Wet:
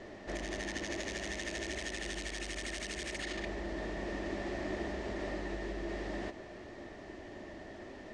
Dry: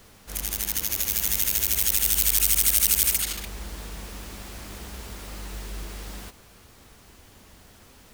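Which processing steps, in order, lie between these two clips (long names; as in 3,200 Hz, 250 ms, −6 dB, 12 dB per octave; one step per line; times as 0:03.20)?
Bessel low-pass filter 4,600 Hz, order 6
downward compressor 5 to 1, threshold −37 dBFS, peak gain reduction 10.5 dB
hollow resonant body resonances 350/600/1,800 Hz, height 18 dB, ringing for 25 ms
level −4 dB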